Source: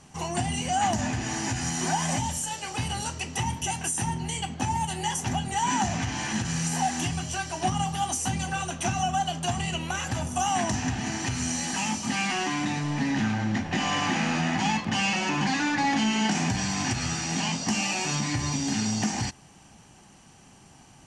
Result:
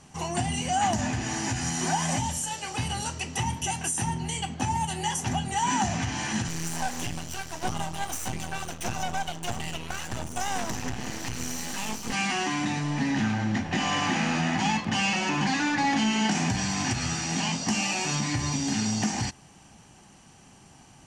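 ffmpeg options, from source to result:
-filter_complex "[0:a]asettb=1/sr,asplit=3[s0][s1][s2];[s0]atrim=end=6.484[s3];[s1]atrim=start=6.48:end=12.13,asetpts=PTS-STARTPTS,afade=t=in:d=0.004:c=qsin,afade=t=out:st=5.646:d=0.004:c=qsin,aeval=exprs='max(val(0),0)':c=same[s4];[s2]atrim=start=12.126[s5];[s3][s4]acrossfade=d=0.004:c1=hsin:c2=qsin[s6];[s6][s5]acrossfade=d=0.004:c1=qsin:c2=hsin"

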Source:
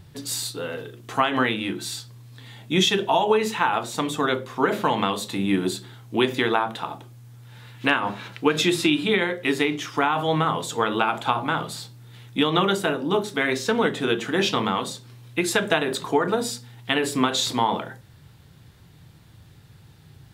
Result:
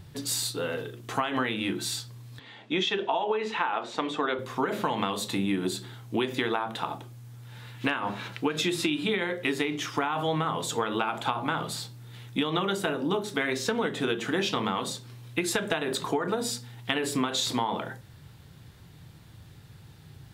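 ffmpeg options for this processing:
-filter_complex "[0:a]asettb=1/sr,asplit=3[s0][s1][s2];[s0]atrim=end=2.394[s3];[s1]atrim=start=2.39:end=4.39,asetpts=PTS-STARTPTS,afade=t=in:d=0.004:c=qsin,afade=t=out:st=1.996:d=0.004:c=qsin,highpass=280,lowpass=3600[s4];[s2]atrim=start=4.386[s5];[s3][s4]acrossfade=d=0.004:c1=hsin:c2=qsin[s6];[s6][s5]acrossfade=d=0.004:c1=qsin:c2=hsin,acompressor=threshold=0.0631:ratio=6"

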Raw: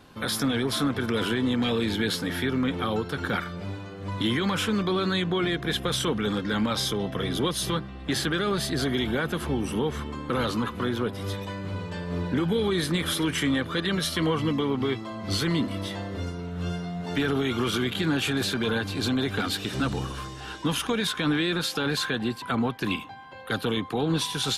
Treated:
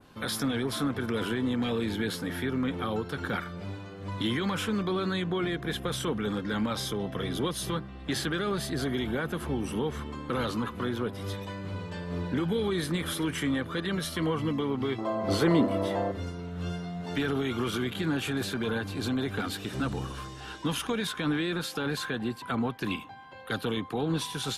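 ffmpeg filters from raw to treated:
-filter_complex "[0:a]asettb=1/sr,asplit=3[s0][s1][s2];[s0]atrim=end=14.984[s3];[s1]atrim=start=14.98:end=16.12,asetpts=PTS-STARTPTS,afade=t=in:d=0.004:c=qsin,afade=t=out:st=1.136:d=0.004:c=qsin,equalizer=f=600:t=o:w=2.1:g=14[s4];[s2]atrim=start=16.116[s5];[s3][s4]acrossfade=d=0.004:c1=hsin:c2=qsin[s6];[s6][s5]acrossfade=d=0.004:c1=qsin:c2=hsin,adynamicequalizer=threshold=0.00794:dfrequency=4200:dqfactor=0.71:tfrequency=4200:tqfactor=0.71:attack=5:release=100:ratio=0.375:range=2.5:mode=cutabove:tftype=bell,volume=0.668"

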